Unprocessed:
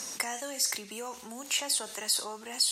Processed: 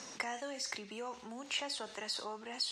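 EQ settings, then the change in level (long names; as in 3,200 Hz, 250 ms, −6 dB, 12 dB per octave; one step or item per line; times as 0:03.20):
high-frequency loss of the air 140 metres
−2.5 dB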